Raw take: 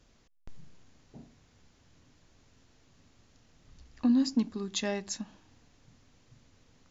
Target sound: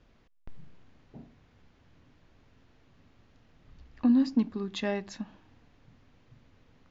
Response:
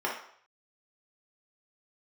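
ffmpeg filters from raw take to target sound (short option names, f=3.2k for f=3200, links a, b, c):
-af "lowpass=3k,volume=2dB"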